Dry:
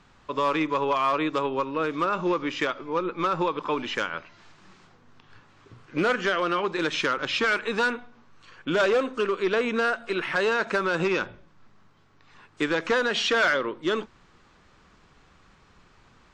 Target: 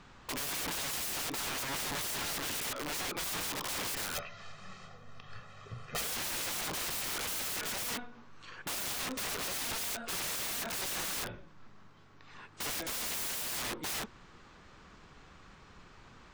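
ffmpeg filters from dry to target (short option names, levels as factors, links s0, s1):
-filter_complex "[0:a]aeval=exprs='(mod(44.7*val(0)+1,2)-1)/44.7':c=same,asettb=1/sr,asplit=3[s0][s1][s2];[s0]atrim=end=4.154[s3];[s1]atrim=start=4.15:end=6.01,asetpts=PTS-STARTPTS,afade=t=in:d=0.004:c=qsin,afade=t=out:st=1.856:d=0.004:c=qsin,aecho=1:1:1.6:0.93,atrim=end_sample=82026[s4];[s2]atrim=start=6.006[s5];[s3][s4]acrossfade=d=0.004:c1=hsin:c2=qsin[s6];[s6][s5]acrossfade=d=0.004:c1=qsin:c2=hsin,volume=1.19"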